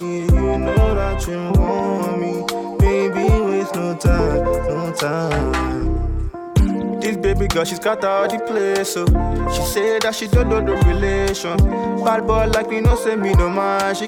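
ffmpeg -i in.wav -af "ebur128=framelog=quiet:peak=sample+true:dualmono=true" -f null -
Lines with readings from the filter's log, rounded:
Integrated loudness:
  I:         -15.5 LUFS
  Threshold: -25.5 LUFS
Loudness range:
  LRA:         2.4 LU
  Threshold: -35.7 LUFS
  LRA low:   -17.0 LUFS
  LRA high:  -14.6 LUFS
Sample peak:
  Peak:       -3.3 dBFS
True peak:
  Peak:       -3.3 dBFS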